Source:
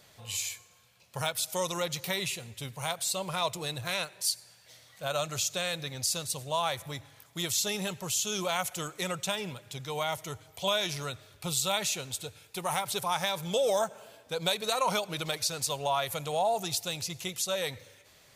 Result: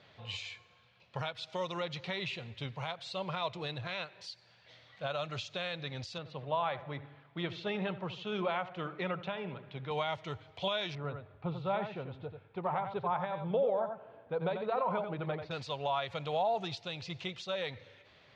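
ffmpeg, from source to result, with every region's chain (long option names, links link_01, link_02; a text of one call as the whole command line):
ffmpeg -i in.wav -filter_complex "[0:a]asettb=1/sr,asplit=3[link_01][link_02][link_03];[link_01]atrim=end=6.184[link_04];[link_02]atrim=start=6.18:end=9.91,asetpts=PTS-STARTPTS,afade=type=in:duration=0.004:curve=qsin,afade=type=out:start_time=3.726:duration=0.004:curve=qsin,highpass=120,lowpass=2300,asplit=2[link_05][link_06];[link_06]adelay=76,lowpass=frequency=1200:poles=1,volume=-12.5dB,asplit=2[link_07][link_08];[link_08]adelay=76,lowpass=frequency=1200:poles=1,volume=0.51,asplit=2[link_09][link_10];[link_10]adelay=76,lowpass=frequency=1200:poles=1,volume=0.51,asplit=2[link_11][link_12];[link_12]adelay=76,lowpass=frequency=1200:poles=1,volume=0.51,asplit=2[link_13][link_14];[link_14]adelay=76,lowpass=frequency=1200:poles=1,volume=0.51[link_15];[link_05][link_07][link_09][link_11][link_13][link_15]amix=inputs=6:normalize=0,atrim=end_sample=164493[link_16];[link_03]atrim=start=9.906[link_17];[link_04][link_16]acrossfade=duration=0.004:curve1=hsin:curve2=qsin[link_18];[link_18][link_17]acrossfade=duration=0.004:curve1=qsin:curve2=hsin,asettb=1/sr,asplit=3[link_19][link_20][link_21];[link_19]atrim=end=10.954[link_22];[link_20]atrim=start=10.95:end=15.51,asetpts=PTS-STARTPTS,afade=type=in:duration=0.004:curve=qsin,afade=type=out:start_time=4.556:duration=0.004:curve=qsin,lowpass=1200,aecho=1:1:90:0.398,atrim=end_sample=201096[link_23];[link_21]atrim=start=15.506[link_24];[link_22][link_23]acrossfade=duration=0.004:curve1=hsin:curve2=qsin[link_25];[link_25][link_24]acrossfade=duration=0.004:curve1=qsin:curve2=hsin,highpass=60,alimiter=limit=-22.5dB:level=0:latency=1:release=317,lowpass=frequency=3800:width=0.5412,lowpass=frequency=3800:width=1.3066" out.wav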